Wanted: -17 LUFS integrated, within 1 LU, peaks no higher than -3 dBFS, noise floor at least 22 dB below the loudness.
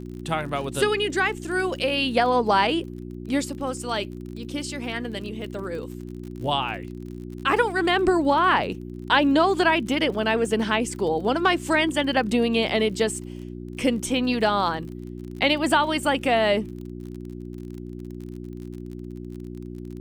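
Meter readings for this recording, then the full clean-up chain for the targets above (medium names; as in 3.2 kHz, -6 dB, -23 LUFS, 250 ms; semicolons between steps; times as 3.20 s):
tick rate 39 per s; hum 60 Hz; highest harmonic 360 Hz; hum level -33 dBFS; loudness -23.0 LUFS; peak level -5.5 dBFS; loudness target -17.0 LUFS
-> de-click; de-hum 60 Hz, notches 6; trim +6 dB; peak limiter -3 dBFS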